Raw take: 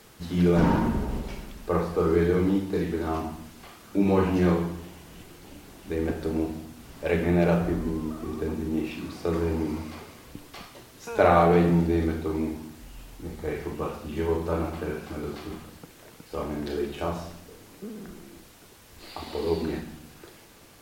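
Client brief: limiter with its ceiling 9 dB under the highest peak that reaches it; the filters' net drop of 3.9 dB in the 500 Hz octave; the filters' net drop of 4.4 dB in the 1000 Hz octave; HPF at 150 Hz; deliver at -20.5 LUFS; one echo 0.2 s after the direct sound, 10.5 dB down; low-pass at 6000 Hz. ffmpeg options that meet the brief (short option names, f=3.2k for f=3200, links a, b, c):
-af "highpass=150,lowpass=6k,equalizer=f=500:t=o:g=-4,equalizer=f=1k:t=o:g=-4.5,alimiter=limit=-18.5dB:level=0:latency=1,aecho=1:1:200:0.299,volume=11dB"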